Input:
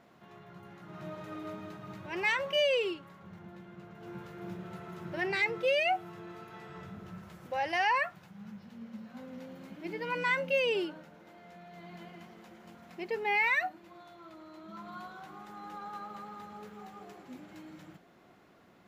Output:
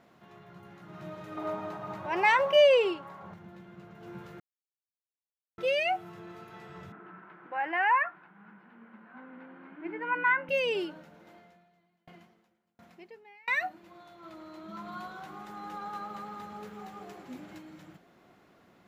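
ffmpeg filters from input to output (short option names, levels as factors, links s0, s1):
-filter_complex "[0:a]asettb=1/sr,asplit=3[s0][s1][s2];[s0]atrim=end=1.374[s3];[s1]atrim=start=1.37:end=3.34,asetpts=PTS-STARTPTS,afade=t=in:d=0.004:c=qsin,afade=t=out:st=1.966:d=0.004:c=qsin,equalizer=f=830:w=0.85:g=13[s4];[s2]atrim=start=3.336[s5];[s3][s4]acrossfade=d=0.004:c1=hsin:c2=qsin[s6];[s6][s5]acrossfade=d=0.004:c1=qsin:c2=hsin,asettb=1/sr,asplit=3[s7][s8][s9];[s7]atrim=end=6.924[s10];[s8]atrim=start=6.92:end=10.49,asetpts=PTS-STARTPTS,afade=t=in:d=0.004:c=qsin,afade=t=out:st=3.566:d=0.004:c=qsin,highpass=f=210:w=0.5412,highpass=f=210:w=1.3066,equalizer=f=220:t=q:w=4:g=-9,equalizer=f=310:t=q:w=4:g=5,equalizer=f=540:t=q:w=4:g=-8,equalizer=f=1000:t=q:w=4:g=5,equalizer=f=1500:t=q:w=4:g=8,lowpass=f=2400:w=0.5412,lowpass=f=2400:w=1.3066[s11];[s9]atrim=start=10.486[s12];[s10][s11]acrossfade=d=0.004:c1=hsin:c2=qsin[s13];[s13][s12]acrossfade=d=0.004:c1=qsin:c2=hsin,asettb=1/sr,asplit=3[s14][s15][s16];[s14]atrim=end=11.364[s17];[s15]atrim=start=11.36:end=13.48,asetpts=PTS-STARTPTS,afade=t=in:d=0.004:c=qsin,afade=t=out:st=2.116:d=0.004:c=qsin,aeval=exprs='val(0)*pow(10,-34*if(lt(mod(1.4*n/s,1),2*abs(1.4)/1000),1-mod(1.4*n/s,1)/(2*abs(1.4)/1000),(mod(1.4*n/s,1)-2*abs(1.4)/1000)/(1-2*abs(1.4)/1000))/20)':c=same[s18];[s16]atrim=start=13.476[s19];[s17][s18]acrossfade=d=0.004:c1=hsin:c2=qsin[s20];[s20][s19]acrossfade=d=0.004:c1=qsin:c2=hsin,asplit=5[s21][s22][s23][s24][s25];[s21]atrim=end=4.4,asetpts=PTS-STARTPTS,afade=t=out:st=4.396:d=0.004:c=hsin[s26];[s22]atrim=start=4.4:end=5.58,asetpts=PTS-STARTPTS,volume=0[s27];[s23]atrim=start=5.58:end=14.232,asetpts=PTS-STARTPTS,afade=t=in:d=0.004:c=hsin[s28];[s24]atrim=start=14.228:end=17.582,asetpts=PTS-STARTPTS,volume=1.5[s29];[s25]atrim=start=17.578[s30];[s26][s27][s28]concat=n=3:v=0:a=1[s31];[s31][s29]acrossfade=d=0.004:c1=hsin:c2=hsin[s32];[s32][s30]acrossfade=d=0.004:c1=hsin:c2=hsin"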